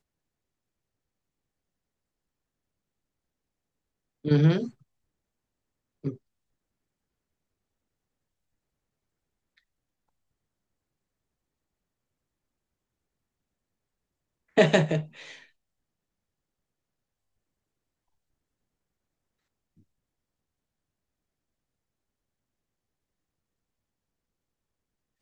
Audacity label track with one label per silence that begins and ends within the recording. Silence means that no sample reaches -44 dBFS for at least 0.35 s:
4.700000	6.040000	silence
6.160000	14.570000	silence